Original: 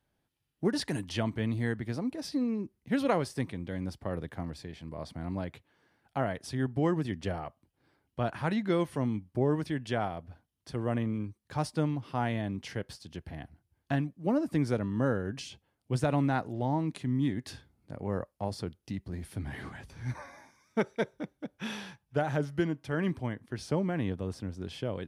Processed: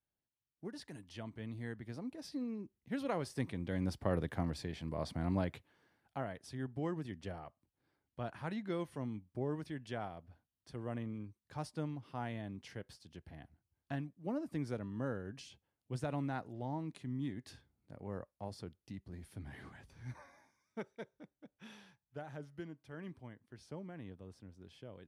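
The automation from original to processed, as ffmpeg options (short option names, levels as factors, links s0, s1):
-af "volume=1.12,afade=t=in:st=1.02:d=1.13:silence=0.446684,afade=t=in:st=3.11:d=0.9:silence=0.281838,afade=t=out:st=5.38:d=0.86:silence=0.266073,afade=t=out:st=20.02:d=1.04:silence=0.473151"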